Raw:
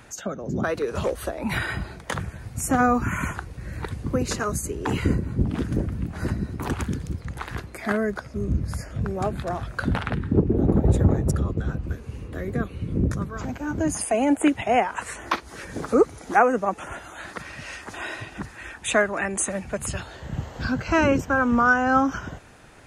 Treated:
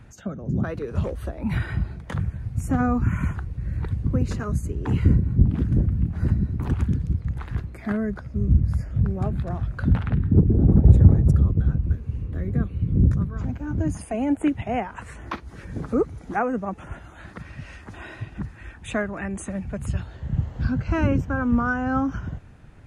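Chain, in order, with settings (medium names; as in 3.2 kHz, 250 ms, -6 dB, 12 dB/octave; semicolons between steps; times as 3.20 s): tone controls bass +15 dB, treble -7 dB; trim -7.5 dB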